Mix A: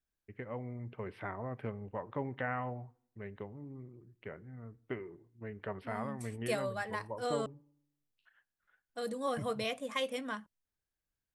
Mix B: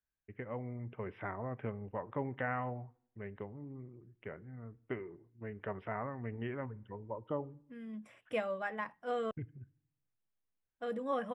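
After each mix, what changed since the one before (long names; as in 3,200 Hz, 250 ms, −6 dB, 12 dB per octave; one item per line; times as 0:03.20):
second voice: entry +1.85 s
master: add Savitzky-Golay smoothing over 25 samples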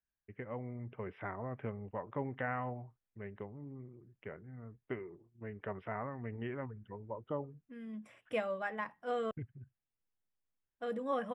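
reverb: off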